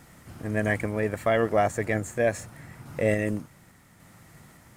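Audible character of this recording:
a quantiser's noise floor 10 bits, dither triangular
sample-and-hold tremolo
SBC

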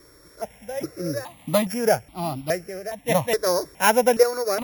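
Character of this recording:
a buzz of ramps at a fixed pitch in blocks of 8 samples
sample-and-hold tremolo 2.6 Hz
notches that jump at a steady rate 2.4 Hz 770–1,700 Hz

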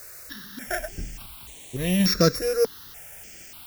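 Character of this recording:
a buzz of ramps at a fixed pitch in blocks of 8 samples
sample-and-hold tremolo, depth 55%
a quantiser's noise floor 8 bits, dither triangular
notches that jump at a steady rate 3.4 Hz 870–5,000 Hz

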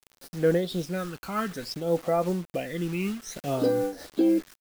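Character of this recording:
phaser sweep stages 12, 0.58 Hz, lowest notch 590–3,000 Hz
a quantiser's noise floor 8 bits, dither none
amplitude modulation by smooth noise

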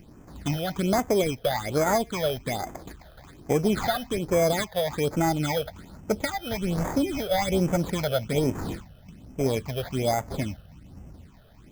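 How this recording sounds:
aliases and images of a low sample rate 2,800 Hz, jitter 0%
phaser sweep stages 8, 1.2 Hz, lowest notch 280–4,000 Hz

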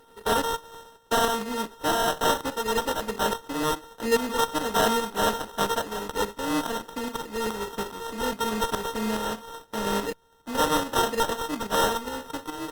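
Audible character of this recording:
a buzz of ramps at a fixed pitch in blocks of 32 samples
tremolo saw up 2.4 Hz, depth 55%
aliases and images of a low sample rate 2,300 Hz, jitter 0%
Opus

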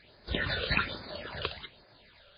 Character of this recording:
phaser sweep stages 8, 1.2 Hz, lowest notch 260–3,000 Hz
a quantiser's noise floor 12 bits, dither triangular
MP3

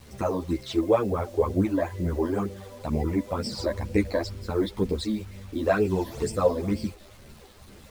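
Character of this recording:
phaser sweep stages 12, 2.1 Hz, lowest notch 130–1,300 Hz
a quantiser's noise floor 8 bits, dither none
a shimmering, thickened sound

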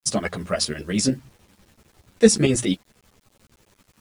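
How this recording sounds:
tremolo saw up 11 Hz, depth 70%
a quantiser's noise floor 10 bits, dither none
a shimmering, thickened sound

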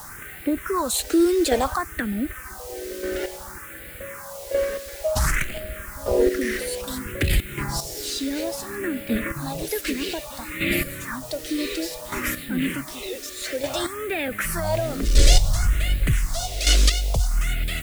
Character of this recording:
chopped level 0.66 Hz, depth 65%, duty 15%
a quantiser's noise floor 8 bits, dither triangular
phaser sweep stages 4, 0.58 Hz, lowest notch 140–1,000 Hz

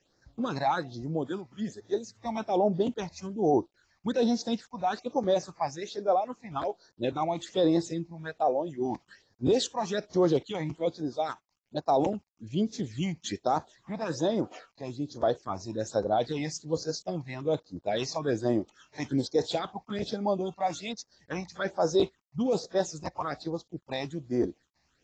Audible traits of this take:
a quantiser's noise floor 12 bits, dither none
phaser sweep stages 8, 1.2 Hz, lowest notch 410–3,000 Hz
AAC

